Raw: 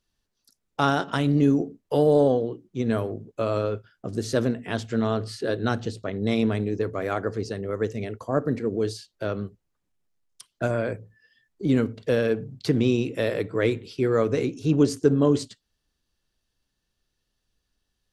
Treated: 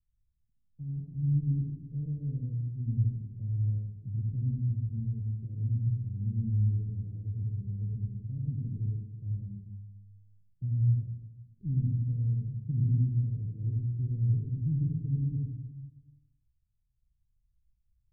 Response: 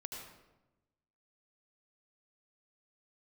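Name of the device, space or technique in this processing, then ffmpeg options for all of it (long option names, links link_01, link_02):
club heard from the street: -filter_complex "[0:a]alimiter=limit=-13.5dB:level=0:latency=1,lowpass=frequency=130:width=0.5412,lowpass=frequency=130:width=1.3066[link_01];[1:a]atrim=start_sample=2205[link_02];[link_01][link_02]afir=irnorm=-1:irlink=0,volume=6.5dB"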